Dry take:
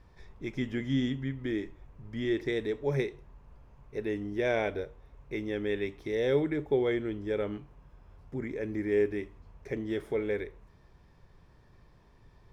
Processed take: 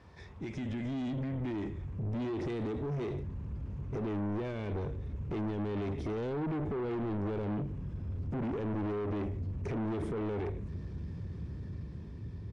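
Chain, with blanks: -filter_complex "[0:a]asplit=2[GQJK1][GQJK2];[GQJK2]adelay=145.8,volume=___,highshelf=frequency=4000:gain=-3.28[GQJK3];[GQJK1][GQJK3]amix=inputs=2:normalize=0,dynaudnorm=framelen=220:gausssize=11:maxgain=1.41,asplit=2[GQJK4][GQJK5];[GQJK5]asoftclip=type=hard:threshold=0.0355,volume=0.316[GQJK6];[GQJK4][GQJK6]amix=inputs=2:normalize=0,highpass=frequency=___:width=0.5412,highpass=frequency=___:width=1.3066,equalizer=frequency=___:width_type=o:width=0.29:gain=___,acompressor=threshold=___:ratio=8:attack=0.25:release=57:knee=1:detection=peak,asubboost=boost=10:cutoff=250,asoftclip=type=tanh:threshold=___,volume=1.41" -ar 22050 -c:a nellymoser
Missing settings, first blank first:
0.0355, 73, 73, 130, -6.5, 0.0178, 0.0178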